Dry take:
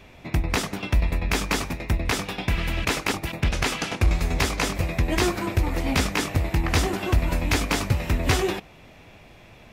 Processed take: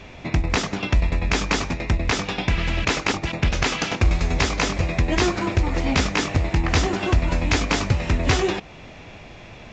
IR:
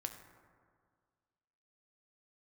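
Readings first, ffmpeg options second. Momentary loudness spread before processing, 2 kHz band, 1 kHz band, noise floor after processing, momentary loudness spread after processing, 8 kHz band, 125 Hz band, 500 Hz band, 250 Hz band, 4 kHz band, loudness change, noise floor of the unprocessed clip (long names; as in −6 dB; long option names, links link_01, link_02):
4 LU, +2.5 dB, +2.5 dB, −42 dBFS, 5 LU, +0.5 dB, +2.5 dB, +2.5 dB, +3.0 dB, +2.5 dB, +2.5 dB, −49 dBFS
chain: -filter_complex "[0:a]asplit=2[link_01][link_02];[link_02]acompressor=threshold=-32dB:ratio=6,volume=2dB[link_03];[link_01][link_03]amix=inputs=2:normalize=0" -ar 16000 -c:a pcm_alaw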